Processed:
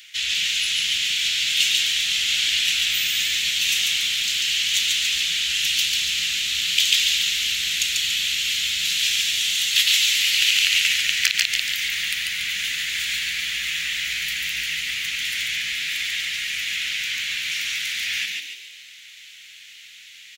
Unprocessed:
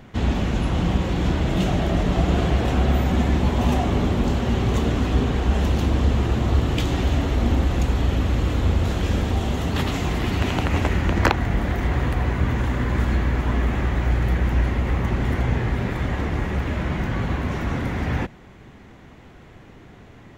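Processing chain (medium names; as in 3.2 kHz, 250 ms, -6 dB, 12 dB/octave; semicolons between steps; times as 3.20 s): inverse Chebyshev high-pass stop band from 1 kHz, stop band 50 dB; frequency-shifting echo 142 ms, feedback 47%, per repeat +100 Hz, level -3 dB; loudness maximiser +17.5 dB; trim -1 dB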